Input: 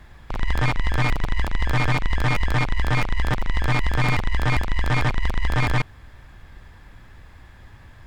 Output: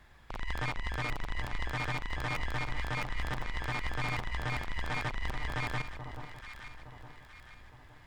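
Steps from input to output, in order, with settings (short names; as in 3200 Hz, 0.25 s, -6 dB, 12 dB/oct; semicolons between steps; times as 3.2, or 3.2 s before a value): low shelf 390 Hz -6.5 dB; echo with dull and thin repeats by turns 0.432 s, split 1100 Hz, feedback 66%, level -9 dB; limiter -17 dBFS, peak gain reduction 5 dB; gain -8 dB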